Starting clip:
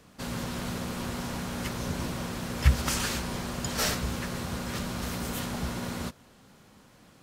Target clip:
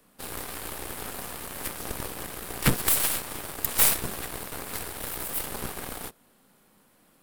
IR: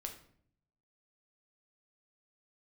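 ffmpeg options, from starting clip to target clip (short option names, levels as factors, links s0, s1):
-filter_complex "[0:a]highshelf=f=6800:g=-5.5,acrossover=split=150|2400[s0][s1][s2];[s0]aeval=exprs='abs(val(0))':c=same[s3];[s3][s1][s2]amix=inputs=3:normalize=0,aeval=exprs='0.355*(cos(1*acos(clip(val(0)/0.355,-1,1)))-cos(1*PI/2))+0.0224*(cos(7*acos(clip(val(0)/0.355,-1,1)))-cos(7*PI/2))+0.126*(cos(8*acos(clip(val(0)/0.355,-1,1)))-cos(8*PI/2))':c=same,aexciter=amount=6:drive=4.1:freq=8600"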